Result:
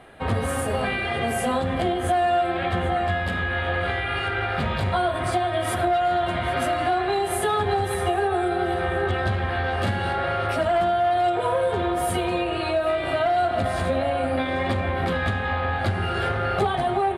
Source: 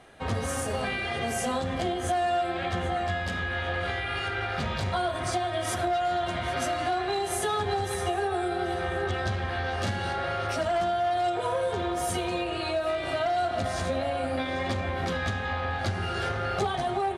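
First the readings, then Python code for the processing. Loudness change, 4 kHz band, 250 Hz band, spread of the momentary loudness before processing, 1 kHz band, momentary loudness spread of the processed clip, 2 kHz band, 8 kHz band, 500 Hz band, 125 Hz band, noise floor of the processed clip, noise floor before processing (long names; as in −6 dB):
+5.0 dB, +2.0 dB, +5.5 dB, 3 LU, +5.5 dB, 3 LU, +5.0 dB, 0.0 dB, +5.5 dB, +5.5 dB, −27 dBFS, −32 dBFS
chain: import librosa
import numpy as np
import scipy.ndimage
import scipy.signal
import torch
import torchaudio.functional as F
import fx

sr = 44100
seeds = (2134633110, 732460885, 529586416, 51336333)

y = fx.peak_eq(x, sr, hz=6000.0, db=-14.5, octaves=0.77)
y = y * 10.0 ** (5.5 / 20.0)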